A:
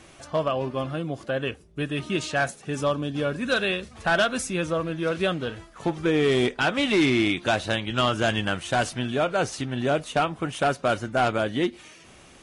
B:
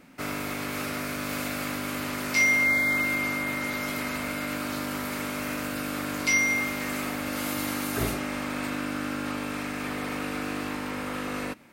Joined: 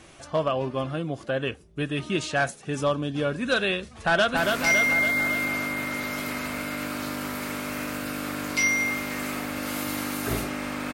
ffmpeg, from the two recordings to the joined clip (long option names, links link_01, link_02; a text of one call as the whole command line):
ffmpeg -i cue0.wav -i cue1.wav -filter_complex "[0:a]apad=whole_dur=10.93,atrim=end=10.93,atrim=end=4.372[link_01];[1:a]atrim=start=2.068:end=8.63[link_02];[link_01][link_02]acrossfade=duration=0.004:curve1=hsin:curve2=hsin,asplit=2[link_03][link_04];[link_04]afade=type=in:start_time=3.9:duration=0.01,afade=type=out:start_time=4.37:duration=0.01,aecho=0:1:280|560|840|1120|1400|1680|1960|2240|2520:0.668344|0.401006|0.240604|0.144362|0.0866174|0.0519704|0.0311823|0.0187094|0.0112256[link_05];[link_03][link_05]amix=inputs=2:normalize=0" out.wav